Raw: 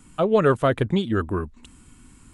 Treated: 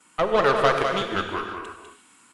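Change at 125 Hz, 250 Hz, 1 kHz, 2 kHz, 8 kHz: −10.5 dB, −8.0 dB, +4.5 dB, +5.0 dB, can't be measured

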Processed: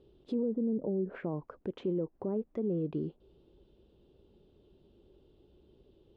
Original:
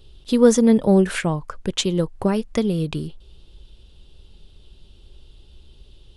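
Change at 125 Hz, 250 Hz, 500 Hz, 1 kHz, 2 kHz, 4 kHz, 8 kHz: −15.0 dB, −15.0 dB, −14.5 dB, −20.0 dB, below −20 dB, below −30 dB, below −40 dB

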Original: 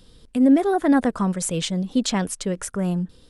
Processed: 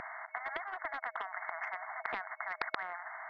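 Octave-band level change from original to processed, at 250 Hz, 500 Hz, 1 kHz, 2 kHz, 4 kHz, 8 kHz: below −40 dB, −21.5 dB, −9.5 dB, −2.0 dB, −21.5 dB, below −40 dB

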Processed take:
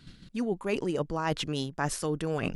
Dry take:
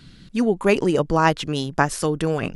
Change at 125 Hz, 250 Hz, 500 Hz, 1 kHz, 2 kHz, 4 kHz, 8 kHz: −8.5, −9.5, −10.5, −12.5, −11.5, −6.5, −6.0 decibels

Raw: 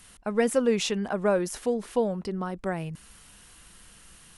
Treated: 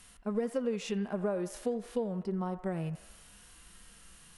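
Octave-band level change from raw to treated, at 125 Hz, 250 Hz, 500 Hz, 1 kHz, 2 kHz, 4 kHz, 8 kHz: −2.5, −5.0, −8.0, −9.0, −12.0, −12.5, −11.5 decibels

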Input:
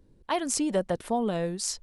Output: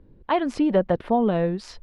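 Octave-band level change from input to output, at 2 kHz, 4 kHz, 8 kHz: +4.0 dB, −4.0 dB, below −15 dB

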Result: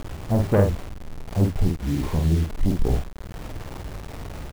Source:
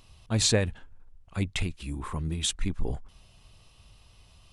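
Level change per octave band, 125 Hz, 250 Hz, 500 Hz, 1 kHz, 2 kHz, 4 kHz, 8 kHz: +9.0, +9.0, +8.0, +8.5, −1.5, −10.5, −11.5 decibels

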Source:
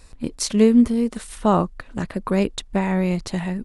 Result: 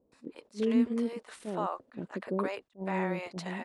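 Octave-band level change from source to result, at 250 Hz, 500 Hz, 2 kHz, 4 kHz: −13.0, −11.0, −7.5, −15.5 decibels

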